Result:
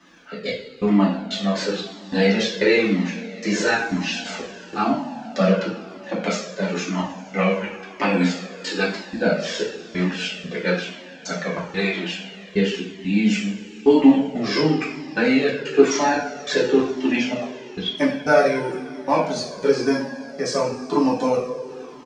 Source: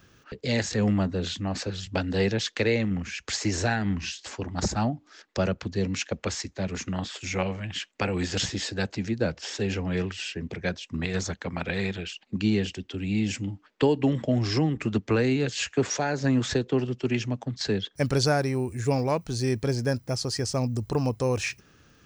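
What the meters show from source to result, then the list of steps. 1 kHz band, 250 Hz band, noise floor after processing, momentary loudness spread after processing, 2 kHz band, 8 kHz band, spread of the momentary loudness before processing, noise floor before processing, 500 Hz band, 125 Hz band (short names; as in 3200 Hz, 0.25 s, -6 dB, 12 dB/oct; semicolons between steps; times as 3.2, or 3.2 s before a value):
+8.5 dB, +6.5 dB, -40 dBFS, 12 LU, +7.5 dB, 0.0 dB, 8 LU, -61 dBFS, +7.5 dB, -2.5 dB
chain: steep high-pass 170 Hz 48 dB/oct; high shelf 10000 Hz +3.5 dB; step gate "xxxxxx....xxxx.." 184 bpm -60 dB; crackle 100/s -47 dBFS; air absorption 100 m; speakerphone echo 0.11 s, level -16 dB; two-slope reverb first 0.5 s, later 4.3 s, from -20 dB, DRR -7 dB; cascading flanger falling 1 Hz; gain +7 dB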